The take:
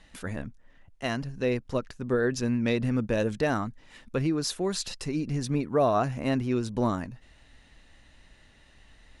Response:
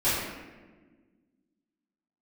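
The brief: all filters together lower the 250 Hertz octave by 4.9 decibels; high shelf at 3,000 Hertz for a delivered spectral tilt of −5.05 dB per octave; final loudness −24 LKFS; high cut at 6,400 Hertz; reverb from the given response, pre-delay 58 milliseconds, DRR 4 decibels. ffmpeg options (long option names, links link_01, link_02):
-filter_complex "[0:a]lowpass=6400,equalizer=frequency=250:width_type=o:gain=-6,highshelf=frequency=3000:gain=7,asplit=2[link_01][link_02];[1:a]atrim=start_sample=2205,adelay=58[link_03];[link_02][link_03]afir=irnorm=-1:irlink=0,volume=-17.5dB[link_04];[link_01][link_04]amix=inputs=2:normalize=0,volume=4.5dB"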